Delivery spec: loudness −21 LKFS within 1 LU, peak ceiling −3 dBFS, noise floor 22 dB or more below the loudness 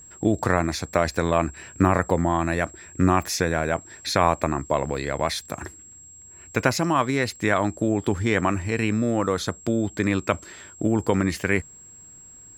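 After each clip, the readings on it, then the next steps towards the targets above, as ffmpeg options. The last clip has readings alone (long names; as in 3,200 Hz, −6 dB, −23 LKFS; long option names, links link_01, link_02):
interfering tone 7,600 Hz; level of the tone −44 dBFS; integrated loudness −24.0 LKFS; sample peak −4.0 dBFS; target loudness −21.0 LKFS
→ -af "bandreject=frequency=7600:width=30"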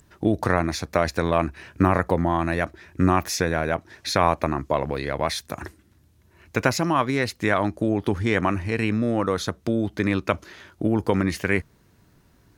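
interfering tone none found; integrated loudness −24.0 LKFS; sample peak −4.0 dBFS; target loudness −21.0 LKFS
→ -af "volume=3dB,alimiter=limit=-3dB:level=0:latency=1"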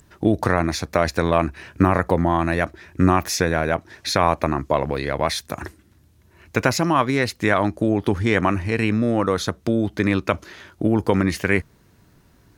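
integrated loudness −21.5 LKFS; sample peak −3.0 dBFS; background noise floor −56 dBFS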